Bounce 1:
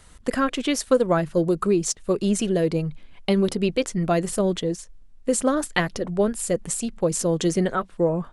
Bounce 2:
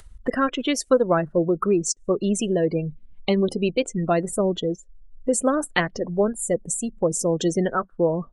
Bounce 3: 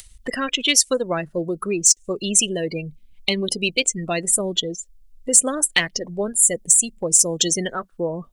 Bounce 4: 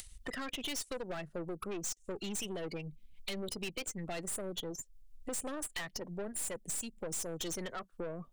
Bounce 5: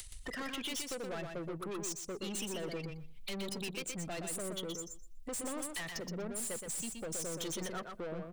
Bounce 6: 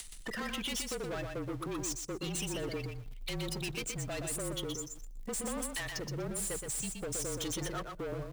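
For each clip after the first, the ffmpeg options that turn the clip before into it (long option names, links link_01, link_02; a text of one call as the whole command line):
ffmpeg -i in.wav -filter_complex "[0:a]afftdn=noise_reduction=33:noise_floor=-33,lowshelf=frequency=140:gain=-7.5,asplit=2[link_01][link_02];[link_02]acompressor=mode=upward:threshold=-23dB:ratio=2.5,volume=2.5dB[link_03];[link_01][link_03]amix=inputs=2:normalize=0,volume=-6dB" out.wav
ffmpeg -i in.wav -af "aexciter=amount=5.4:drive=6.5:freq=2100,equalizer=frequency=1800:width=1.5:gain=2,alimiter=level_in=-3dB:limit=-1dB:release=50:level=0:latency=1,volume=-1dB" out.wav
ffmpeg -i in.wav -filter_complex "[0:a]acrossover=split=140|490|1900[link_01][link_02][link_03][link_04];[link_03]aeval=exprs='0.075*(abs(mod(val(0)/0.075+3,4)-2)-1)':channel_layout=same[link_05];[link_01][link_02][link_05][link_04]amix=inputs=4:normalize=0,aeval=exprs='(tanh(17.8*val(0)+0.55)-tanh(0.55))/17.8':channel_layout=same,acompressor=threshold=-39dB:ratio=2,volume=-3dB" out.wav
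ffmpeg -i in.wav -filter_complex "[0:a]asoftclip=type=tanh:threshold=-33dB,aeval=exprs='0.0224*(cos(1*acos(clip(val(0)/0.0224,-1,1)))-cos(1*PI/2))+0.002*(cos(5*acos(clip(val(0)/0.0224,-1,1)))-cos(5*PI/2))':channel_layout=same,asplit=2[link_01][link_02];[link_02]aecho=0:1:122|244|366:0.562|0.0844|0.0127[link_03];[link_01][link_03]amix=inputs=2:normalize=0" out.wav
ffmpeg -i in.wav -filter_complex "[0:a]asplit=2[link_01][link_02];[link_02]acrusher=bits=7:mix=0:aa=0.000001,volume=-9.5dB[link_03];[link_01][link_03]amix=inputs=2:normalize=0,afreqshift=-35" out.wav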